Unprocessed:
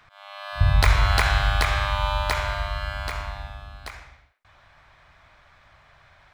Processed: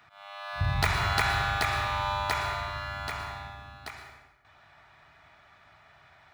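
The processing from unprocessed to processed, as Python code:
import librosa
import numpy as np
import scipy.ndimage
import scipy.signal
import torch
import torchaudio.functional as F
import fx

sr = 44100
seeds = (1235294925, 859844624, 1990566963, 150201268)

p1 = fx.highpass(x, sr, hz=130.0, slope=6)
p2 = fx.high_shelf(p1, sr, hz=5400.0, db=-6.0)
p3 = fx.notch_comb(p2, sr, f0_hz=530.0)
p4 = 10.0 ** (-25.0 / 20.0) * np.tanh(p3 / 10.0 ** (-25.0 / 20.0))
p5 = p3 + (p4 * 10.0 ** (-5.0 / 20.0))
p6 = fx.high_shelf(p5, sr, hz=12000.0, db=8.5)
p7 = fx.rev_plate(p6, sr, seeds[0], rt60_s=1.0, hf_ratio=0.7, predelay_ms=95, drr_db=7.5)
y = p7 * 10.0 ** (-4.5 / 20.0)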